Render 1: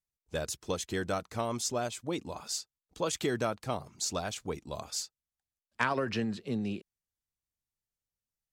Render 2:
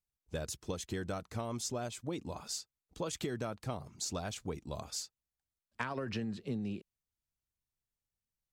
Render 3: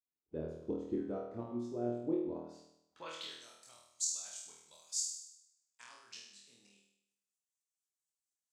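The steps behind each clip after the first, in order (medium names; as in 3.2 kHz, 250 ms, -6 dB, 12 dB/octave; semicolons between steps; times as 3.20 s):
bass shelf 260 Hz +7 dB; compression, threshold -30 dBFS, peak gain reduction 7.5 dB; trim -3.5 dB
tremolo saw up 4.2 Hz, depth 75%; band-pass sweep 340 Hz -> 7.4 kHz, 2.56–3.42 s; flutter echo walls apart 4.3 m, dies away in 0.79 s; trim +5.5 dB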